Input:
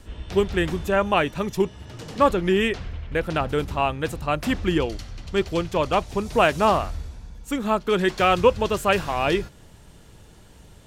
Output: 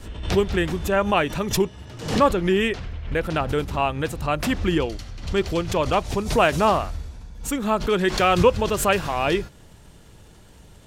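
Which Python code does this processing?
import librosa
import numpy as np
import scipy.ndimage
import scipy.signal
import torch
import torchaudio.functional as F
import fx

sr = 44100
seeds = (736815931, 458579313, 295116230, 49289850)

y = fx.pre_swell(x, sr, db_per_s=97.0)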